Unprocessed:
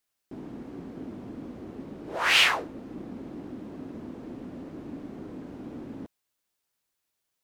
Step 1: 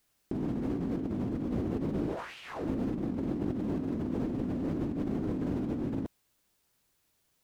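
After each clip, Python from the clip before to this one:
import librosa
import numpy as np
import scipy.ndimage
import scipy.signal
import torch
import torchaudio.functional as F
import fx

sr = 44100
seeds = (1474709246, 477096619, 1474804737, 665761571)

y = fx.low_shelf(x, sr, hz=310.0, db=9.5)
y = fx.over_compress(y, sr, threshold_db=-37.0, ratio=-1.0)
y = y * librosa.db_to_amplitude(2.5)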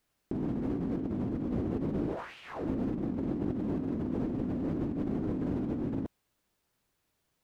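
y = fx.high_shelf(x, sr, hz=3300.0, db=-7.5)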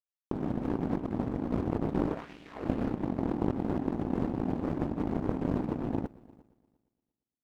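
y = fx.echo_heads(x, sr, ms=116, heads='first and third', feedback_pct=57, wet_db=-14)
y = fx.power_curve(y, sr, exponent=2.0)
y = y * librosa.db_to_amplitude(8.5)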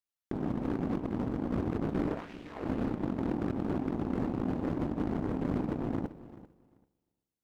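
y = np.clip(x, -10.0 ** (-23.0 / 20.0), 10.0 ** (-23.0 / 20.0))
y = fx.echo_feedback(y, sr, ms=391, feedback_pct=16, wet_db=-17.0)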